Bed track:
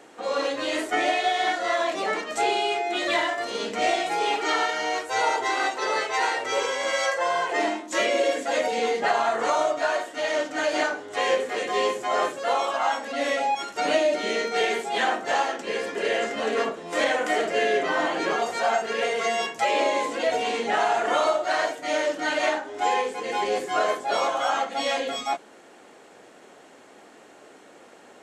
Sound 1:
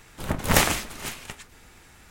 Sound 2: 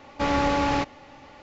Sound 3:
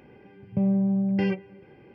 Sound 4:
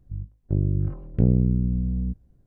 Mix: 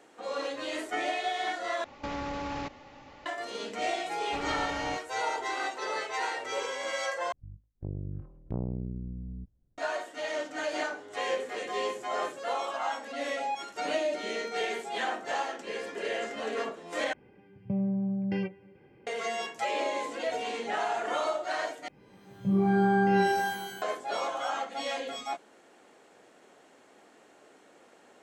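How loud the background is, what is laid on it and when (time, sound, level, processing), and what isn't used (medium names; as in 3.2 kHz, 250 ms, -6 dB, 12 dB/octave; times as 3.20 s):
bed track -8 dB
1.84 s: replace with 2 -3.5 dB + compression, threshold -28 dBFS
4.13 s: add 2 -13.5 dB
7.32 s: replace with 4 -14 dB + loudspeaker Doppler distortion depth 0.76 ms
17.13 s: replace with 3 -6.5 dB
21.88 s: replace with 3 -11 dB + pitch-shifted reverb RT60 1.2 s, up +12 st, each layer -2 dB, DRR -4.5 dB
not used: 1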